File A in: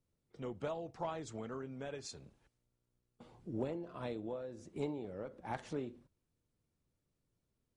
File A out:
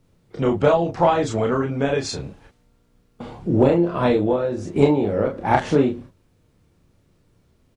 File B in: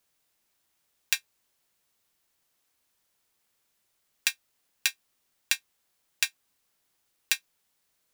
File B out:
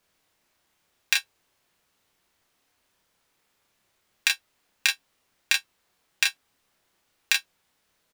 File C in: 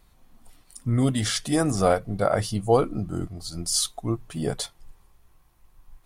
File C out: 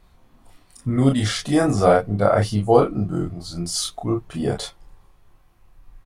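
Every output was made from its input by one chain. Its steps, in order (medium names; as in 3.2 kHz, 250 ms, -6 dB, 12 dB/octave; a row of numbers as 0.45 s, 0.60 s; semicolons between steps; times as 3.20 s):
treble shelf 5.3 kHz -10.5 dB; early reflections 29 ms -3.5 dB, 40 ms -8.5 dB; peak normalisation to -2 dBFS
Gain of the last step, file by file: +21.5 dB, +6.5 dB, +3.5 dB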